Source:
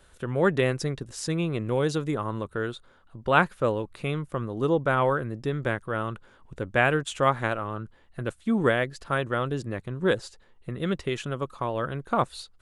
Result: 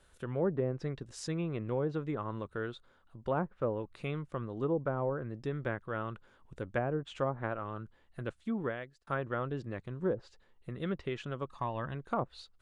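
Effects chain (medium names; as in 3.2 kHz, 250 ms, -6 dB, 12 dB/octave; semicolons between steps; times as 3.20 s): 8.33–9.07 s: fade out; low-pass that closes with the level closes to 670 Hz, closed at -18.5 dBFS; 11.49–11.95 s: comb 1.1 ms, depth 52%; trim -7.5 dB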